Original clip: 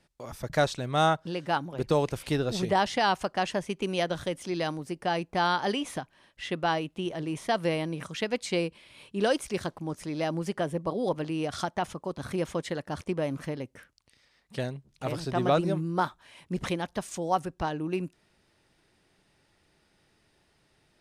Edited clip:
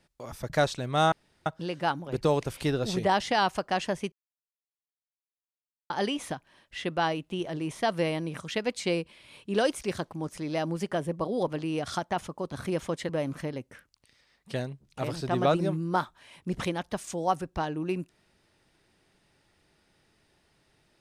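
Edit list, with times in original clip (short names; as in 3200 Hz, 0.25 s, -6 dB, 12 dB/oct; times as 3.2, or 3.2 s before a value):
1.12 insert room tone 0.34 s
3.78–5.56 mute
12.75–13.13 cut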